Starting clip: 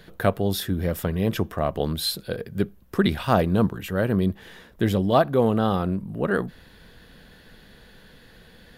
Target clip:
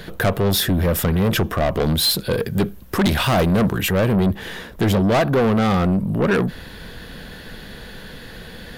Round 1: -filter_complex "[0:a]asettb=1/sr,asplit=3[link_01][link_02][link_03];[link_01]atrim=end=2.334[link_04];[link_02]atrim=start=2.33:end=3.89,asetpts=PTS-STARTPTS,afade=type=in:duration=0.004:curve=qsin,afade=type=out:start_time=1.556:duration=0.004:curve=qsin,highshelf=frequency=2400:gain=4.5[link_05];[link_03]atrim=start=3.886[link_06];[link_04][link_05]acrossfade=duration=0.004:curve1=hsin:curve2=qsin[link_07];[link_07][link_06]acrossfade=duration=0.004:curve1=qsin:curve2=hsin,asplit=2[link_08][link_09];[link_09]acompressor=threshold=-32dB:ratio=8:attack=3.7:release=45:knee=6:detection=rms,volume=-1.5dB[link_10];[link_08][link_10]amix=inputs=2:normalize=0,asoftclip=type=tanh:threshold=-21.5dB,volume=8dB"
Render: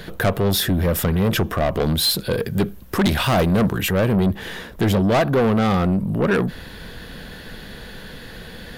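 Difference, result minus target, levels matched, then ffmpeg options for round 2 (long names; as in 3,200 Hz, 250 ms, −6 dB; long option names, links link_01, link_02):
downward compressor: peak gain reduction +7 dB
-filter_complex "[0:a]asettb=1/sr,asplit=3[link_01][link_02][link_03];[link_01]atrim=end=2.334[link_04];[link_02]atrim=start=2.33:end=3.89,asetpts=PTS-STARTPTS,afade=type=in:duration=0.004:curve=qsin,afade=type=out:start_time=1.556:duration=0.004:curve=qsin,highshelf=frequency=2400:gain=4.5[link_05];[link_03]atrim=start=3.886[link_06];[link_04][link_05]acrossfade=duration=0.004:curve1=hsin:curve2=qsin[link_07];[link_07][link_06]acrossfade=duration=0.004:curve1=qsin:curve2=hsin,asplit=2[link_08][link_09];[link_09]acompressor=threshold=-24dB:ratio=8:attack=3.7:release=45:knee=6:detection=rms,volume=-1.5dB[link_10];[link_08][link_10]amix=inputs=2:normalize=0,asoftclip=type=tanh:threshold=-21.5dB,volume=8dB"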